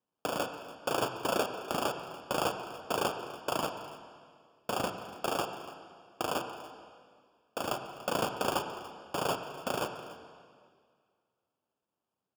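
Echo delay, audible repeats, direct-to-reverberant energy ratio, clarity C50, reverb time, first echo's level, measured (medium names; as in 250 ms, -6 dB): 288 ms, 1, 7.0 dB, 7.5 dB, 2.0 s, -17.5 dB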